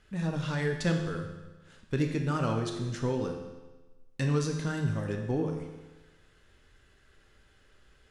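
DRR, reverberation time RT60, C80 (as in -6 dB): 2.5 dB, 1.2 s, 7.5 dB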